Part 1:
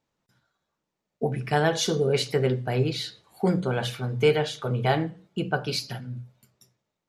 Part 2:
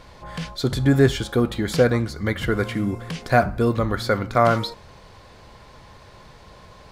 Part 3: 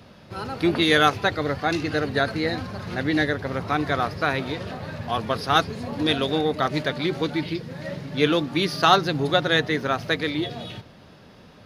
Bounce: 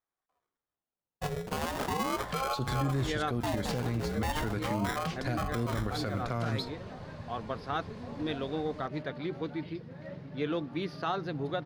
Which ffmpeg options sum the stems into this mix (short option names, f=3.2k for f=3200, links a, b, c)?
-filter_complex "[0:a]acrusher=samples=24:mix=1:aa=0.000001,agate=range=-9dB:threshold=-47dB:ratio=16:detection=peak,aeval=exprs='val(0)*sin(2*PI*630*n/s+630*0.55/0.38*sin(2*PI*0.38*n/s))':c=same,volume=-2.5dB,asplit=2[a][b];[1:a]highshelf=f=9.8k:g=-9.5,acrossover=split=220|3000[c][d][e];[d]acompressor=threshold=-28dB:ratio=6[f];[c][f][e]amix=inputs=3:normalize=0,aeval=exprs='0.376*(cos(1*acos(clip(val(0)/0.376,-1,1)))-cos(1*PI/2))+0.0188*(cos(7*acos(clip(val(0)/0.376,-1,1)))-cos(7*PI/2))':c=same,adelay=1950,volume=-2dB[g];[2:a]lowpass=f=1.5k:p=1,adelay=2200,volume=-10dB[h];[b]apad=whole_len=610947[i];[h][i]sidechaincompress=threshold=-39dB:ratio=8:attack=16:release=137[j];[a][g][j]amix=inputs=3:normalize=0,alimiter=limit=-21.5dB:level=0:latency=1:release=72"